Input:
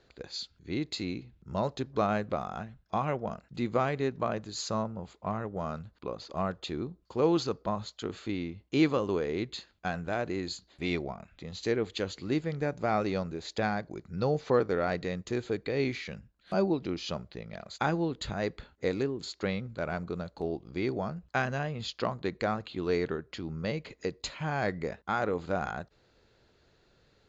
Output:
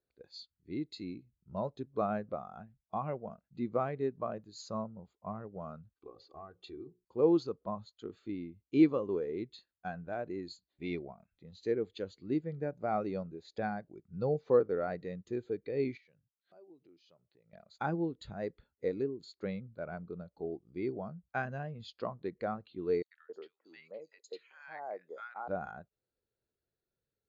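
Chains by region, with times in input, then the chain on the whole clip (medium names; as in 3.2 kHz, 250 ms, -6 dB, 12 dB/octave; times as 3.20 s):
5.91–7.05 s: compression 8:1, threshold -33 dBFS + hum notches 60/120/180/240/300/360/420/480/540/600 Hz + comb 2.6 ms, depth 52%
15.97–17.53 s: high-pass 120 Hz + peaking EQ 200 Hz -15 dB 0.23 oct + compression 3:1, threshold -49 dBFS
23.02–25.48 s: high-pass 490 Hz + three bands offset in time highs, mids, lows 90/270 ms, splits 1.3/5 kHz
whole clip: bass shelf 78 Hz -5 dB; spectral contrast expander 1.5:1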